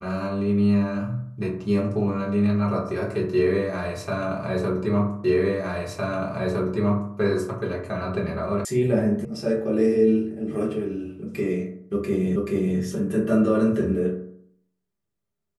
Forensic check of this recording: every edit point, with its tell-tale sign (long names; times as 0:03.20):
0:05.24: the same again, the last 1.91 s
0:08.65: cut off before it has died away
0:09.25: cut off before it has died away
0:12.36: the same again, the last 0.43 s